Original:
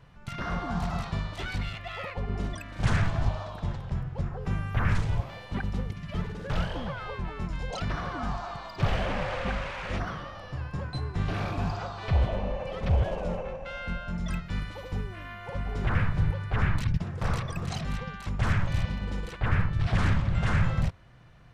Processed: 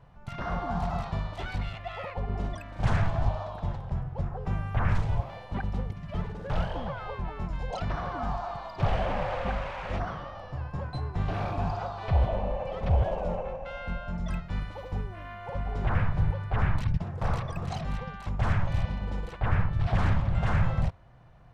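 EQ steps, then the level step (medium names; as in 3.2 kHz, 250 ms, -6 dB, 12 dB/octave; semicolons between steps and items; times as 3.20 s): bass shelf 220 Hz +9.5 dB; peaking EQ 760 Hz +11.5 dB 1.5 oct; dynamic bell 3.1 kHz, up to +3 dB, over -42 dBFS, Q 0.72; -8.5 dB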